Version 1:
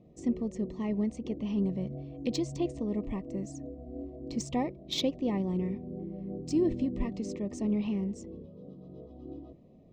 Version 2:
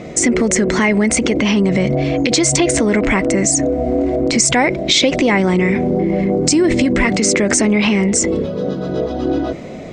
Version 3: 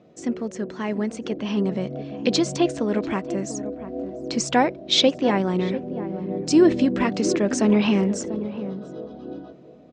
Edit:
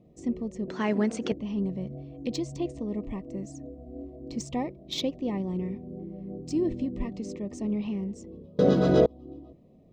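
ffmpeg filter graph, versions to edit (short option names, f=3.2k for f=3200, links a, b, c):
-filter_complex "[0:a]asplit=3[a][b][c];[a]atrim=end=0.682[d];[2:a]atrim=start=0.678:end=1.322[e];[b]atrim=start=1.318:end=8.592[f];[1:a]atrim=start=8.588:end=9.062[g];[c]atrim=start=9.058[h];[d][e]acrossfade=d=0.004:c1=hsin:c2=hsin[i];[i][f]acrossfade=d=0.004:c1=hsin:c2=hsin[j];[j][g]acrossfade=d=0.004:c1=hsin:c2=hsin[k];[k][h]acrossfade=d=0.004:c1=hsin:c2=hsin"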